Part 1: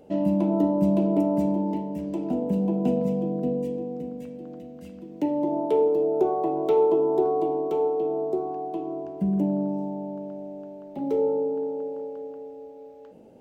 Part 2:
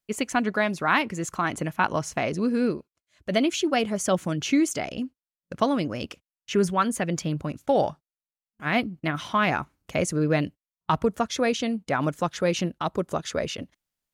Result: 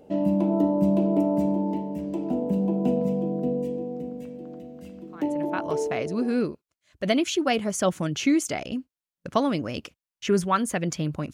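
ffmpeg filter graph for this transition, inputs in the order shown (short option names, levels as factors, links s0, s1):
-filter_complex "[0:a]apad=whole_dur=11.33,atrim=end=11.33,atrim=end=6.48,asetpts=PTS-STARTPTS[s0];[1:a]atrim=start=1.3:end=7.59,asetpts=PTS-STARTPTS[s1];[s0][s1]acrossfade=d=1.44:c1=tri:c2=tri"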